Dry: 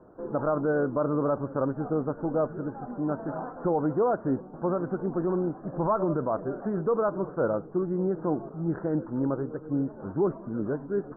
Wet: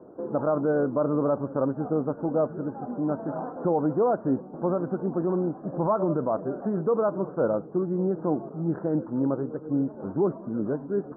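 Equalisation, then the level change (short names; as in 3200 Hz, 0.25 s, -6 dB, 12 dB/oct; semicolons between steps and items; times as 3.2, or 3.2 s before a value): dynamic EQ 380 Hz, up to -6 dB, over -40 dBFS, Q 1.2; band-pass 370 Hz, Q 0.76; +7.0 dB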